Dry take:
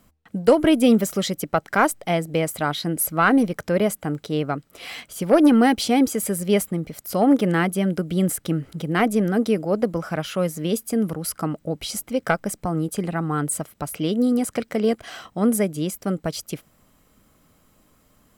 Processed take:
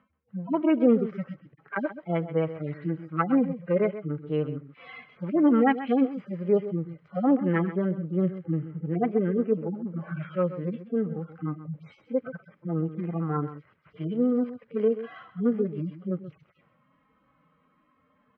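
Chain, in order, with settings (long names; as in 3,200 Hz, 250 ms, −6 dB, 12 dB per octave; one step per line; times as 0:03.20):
harmonic-percussive split with one part muted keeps harmonic
loudspeaker in its box 130–2,400 Hz, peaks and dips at 210 Hz −7 dB, 300 Hz −5 dB, 680 Hz −8 dB, 1,100 Hz +3 dB
single-tap delay 131 ms −13 dB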